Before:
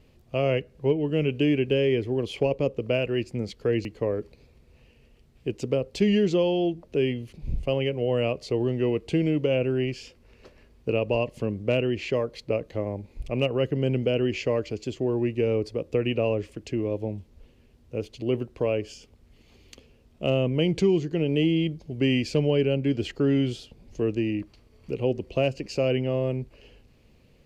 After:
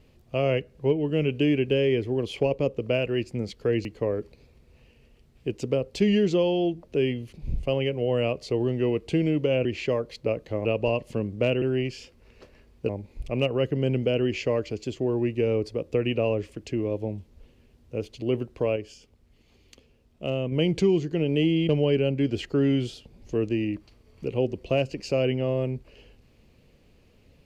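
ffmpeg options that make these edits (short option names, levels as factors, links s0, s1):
-filter_complex "[0:a]asplit=8[s0][s1][s2][s3][s4][s5][s6][s7];[s0]atrim=end=9.652[s8];[s1]atrim=start=11.888:end=12.892[s9];[s2]atrim=start=10.918:end=11.892[s10];[s3]atrim=start=9.648:end=10.922[s11];[s4]atrim=start=12.888:end=18.762[s12];[s5]atrim=start=18.758:end=20.522,asetpts=PTS-STARTPTS,volume=0.596[s13];[s6]atrim=start=20.518:end=21.692[s14];[s7]atrim=start=22.348[s15];[s8][s9]acrossfade=d=0.004:c1=hsin:c2=hsin[s16];[s16][s10]acrossfade=d=0.004:c1=hsin:c2=hsin[s17];[s17][s11]acrossfade=d=0.004:c1=hsin:c2=hsin[s18];[s18][s12]acrossfade=d=0.004:c1=hsin:c2=hsin[s19];[s19][s13]acrossfade=d=0.004:c1=hsin:c2=hsin[s20];[s20][s14]acrossfade=d=0.004:c1=hsin:c2=hsin[s21];[s21][s15]acrossfade=d=0.004:c1=hsin:c2=hsin"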